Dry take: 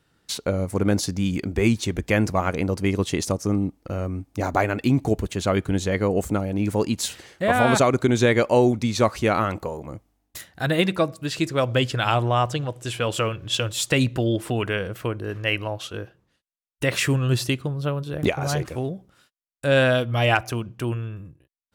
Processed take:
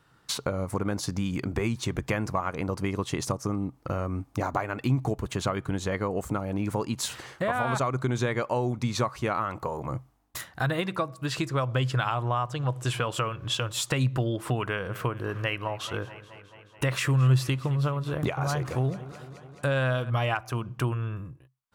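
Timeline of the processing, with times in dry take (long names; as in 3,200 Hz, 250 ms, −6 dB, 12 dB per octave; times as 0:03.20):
0:14.68–0:20.10: feedback echo with a swinging delay time 215 ms, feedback 71%, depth 60 cents, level −21.5 dB
whole clip: parametric band 1,100 Hz +10 dB 0.98 octaves; downward compressor 4 to 1, threshold −27 dBFS; parametric band 130 Hz +11 dB 0.2 octaves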